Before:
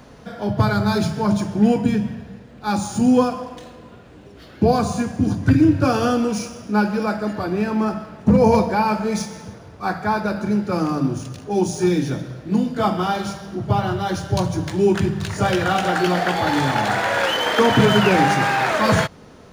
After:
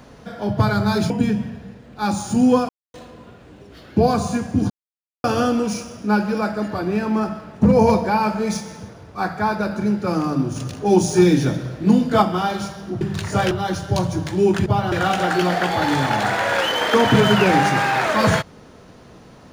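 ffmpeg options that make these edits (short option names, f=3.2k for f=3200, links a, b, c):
-filter_complex "[0:a]asplit=12[a][b][c][d][e][f][g][h][i][j][k][l];[a]atrim=end=1.102[m];[b]atrim=start=1.748:end=3.34,asetpts=PTS-STARTPTS,afade=t=out:st=1.588:d=0.004:c=hsin[n];[c]atrim=start=3.34:end=3.59,asetpts=PTS-STARTPTS,volume=0[o];[d]atrim=start=3.59:end=5.35,asetpts=PTS-STARTPTS,afade=t=in:d=0.004:c=hsin,afade=t=out:st=1.756:d=0.004:c=hsin[p];[e]atrim=start=5.35:end=5.89,asetpts=PTS-STARTPTS,volume=0[q];[f]atrim=start=5.89:end=11.212,asetpts=PTS-STARTPTS,afade=t=in:d=0.004:c=hsin[r];[g]atrim=start=11.208:end=12.872,asetpts=PTS-STARTPTS,volume=4.5dB[s];[h]atrim=start=12.868:end=13.662[t];[i]atrim=start=15.068:end=15.572[u];[j]atrim=start=13.918:end=15.072[v];[k]atrim=start=13.658:end=13.922[w];[l]atrim=start=15.568[x];[n][o][p][q][r]concat=n=5:v=0:a=1[y];[m][y]acrossfade=d=0.004:c1=hsin:c2=hsin[z];[z][s]acrossfade=d=0.004:c1=hsin:c2=hsin[aa];[aa][t]acrossfade=d=0.004:c1=hsin:c2=hsin[ab];[ab][u]acrossfade=d=0.004:c1=hsin:c2=hsin[ac];[ac][v]acrossfade=d=0.004:c1=hsin:c2=hsin[ad];[ad][w]acrossfade=d=0.004:c1=hsin:c2=hsin[ae];[ae][x]acrossfade=d=0.004:c1=hsin:c2=hsin"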